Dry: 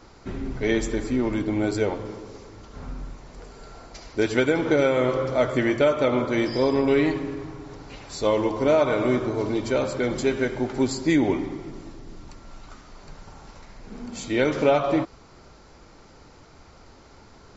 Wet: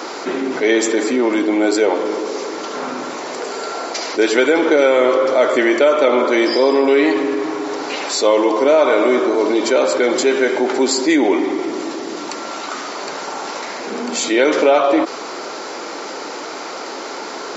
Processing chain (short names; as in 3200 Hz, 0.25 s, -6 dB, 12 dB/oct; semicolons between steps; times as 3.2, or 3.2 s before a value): HPF 310 Hz 24 dB/oct; fast leveller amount 50%; gain +6 dB